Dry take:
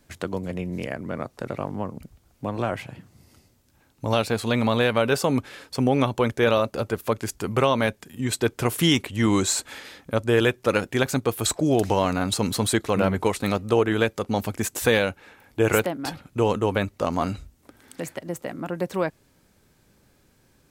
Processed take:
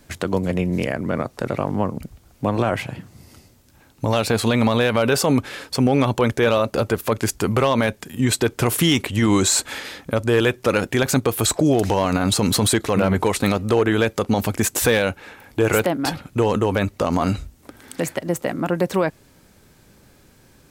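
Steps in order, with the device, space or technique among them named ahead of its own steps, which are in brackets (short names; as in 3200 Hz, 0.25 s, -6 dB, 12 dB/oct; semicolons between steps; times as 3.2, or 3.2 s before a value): clipper into limiter (hard clip -10.5 dBFS, distortion -26 dB; limiter -17 dBFS, peak gain reduction 6.5 dB); gain +8.5 dB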